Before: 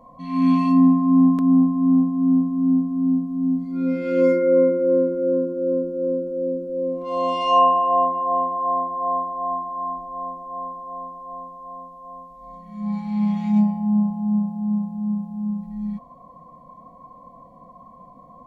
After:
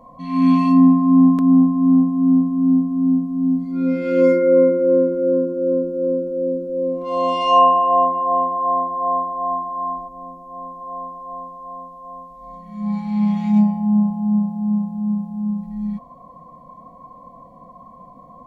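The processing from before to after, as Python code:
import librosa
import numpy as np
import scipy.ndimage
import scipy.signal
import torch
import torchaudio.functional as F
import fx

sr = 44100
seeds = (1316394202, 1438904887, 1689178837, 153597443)

y = fx.peak_eq(x, sr, hz=1200.0, db=fx.line((10.07, -10.5), (10.8, -4.0)), octaves=2.9, at=(10.07, 10.8), fade=0.02)
y = y * 10.0 ** (3.0 / 20.0)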